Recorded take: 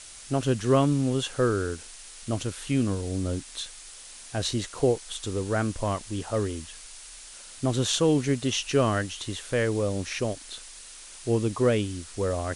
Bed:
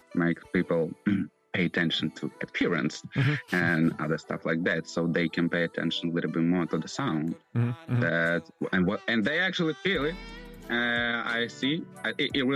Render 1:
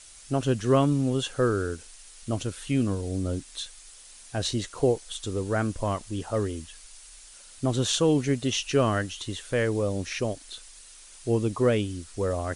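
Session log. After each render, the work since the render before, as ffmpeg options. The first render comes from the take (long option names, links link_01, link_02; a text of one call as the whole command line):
ffmpeg -i in.wav -af "afftdn=noise_reduction=6:noise_floor=-45" out.wav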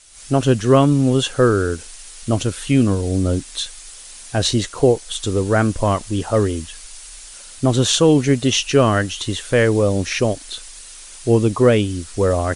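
ffmpeg -i in.wav -af "dynaudnorm=framelen=110:gausssize=3:maxgain=10.5dB" out.wav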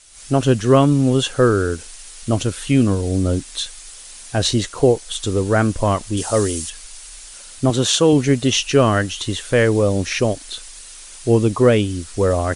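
ffmpeg -i in.wav -filter_complex "[0:a]asettb=1/sr,asplit=3[link_01][link_02][link_03];[link_01]atrim=end=6.174[link_04];[link_02]atrim=start=6.17:end=6.7,asetpts=PTS-STARTPTS,afade=type=in:duration=0.004:curve=qsin,afade=type=out:start_time=0.526:duration=0.004:curve=qsin,bass=frequency=250:gain=-3,treble=frequency=4000:gain=11[link_05];[link_03]atrim=start=6.696[link_06];[link_04][link_05]acrossfade=duration=0.004:curve1=hsin:curve2=qsin[link_07];[link_07][link_06]acrossfade=duration=0.004:curve1=qsin:curve2=hsin,asettb=1/sr,asplit=3[link_08][link_09][link_10];[link_08]atrim=end=7.704[link_11];[link_09]atrim=start=7.7:end=8.13,asetpts=PTS-STARTPTS,afade=type=in:duration=0.004:curve=qsin,afade=type=out:start_time=0.426:duration=0.004:curve=qsin,highpass=frequency=150:poles=1[link_12];[link_10]atrim=start=8.126[link_13];[link_11][link_12]acrossfade=duration=0.004:curve1=hsin:curve2=qsin[link_14];[link_14][link_13]acrossfade=duration=0.004:curve1=qsin:curve2=hsin" out.wav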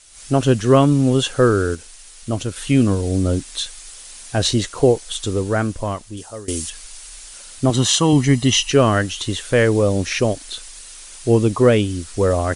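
ffmpeg -i in.wav -filter_complex "[0:a]asettb=1/sr,asplit=3[link_01][link_02][link_03];[link_01]atrim=end=7.744[link_04];[link_02]atrim=start=7.74:end=8.71,asetpts=PTS-STARTPTS,afade=type=in:duration=0.004:curve=qsin,afade=type=out:start_time=0.966:duration=0.004:curve=qsin,aecho=1:1:1:0.6,atrim=end_sample=42777[link_05];[link_03]atrim=start=8.706[link_06];[link_04][link_05]acrossfade=duration=0.004:curve1=hsin:curve2=qsin[link_07];[link_07][link_06]acrossfade=duration=0.004:curve1=qsin:curve2=hsin,asplit=4[link_08][link_09][link_10][link_11];[link_08]atrim=end=1.752[link_12];[link_09]atrim=start=1.748:end=2.562,asetpts=PTS-STARTPTS,volume=-4dB[link_13];[link_10]atrim=start=2.558:end=6.48,asetpts=PTS-STARTPTS,afade=type=out:start_time=2.532:duration=1.39:silence=0.0891251[link_14];[link_11]atrim=start=6.48,asetpts=PTS-STARTPTS,afade=type=in:duration=0.004:curve=hsin:silence=0.0891251[link_15];[link_12][link_13]acrossfade=duration=0.004:curve1=hsin:curve2=hsin[link_16];[link_14][link_15]concat=n=2:v=0:a=1[link_17];[link_16][link_17]acrossfade=duration=0.004:curve1=hsin:curve2=hsin" out.wav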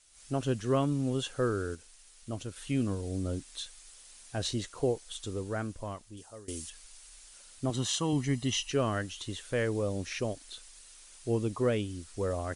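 ffmpeg -i in.wav -af "volume=-15dB" out.wav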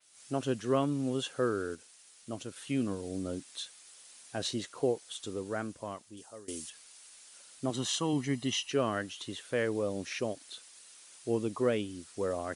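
ffmpeg -i in.wav -af "highpass=170,adynamicequalizer=threshold=0.00224:dfrequency=7200:dqfactor=1.1:tfrequency=7200:tqfactor=1.1:attack=5:release=100:ratio=0.375:range=2:mode=cutabove:tftype=bell" out.wav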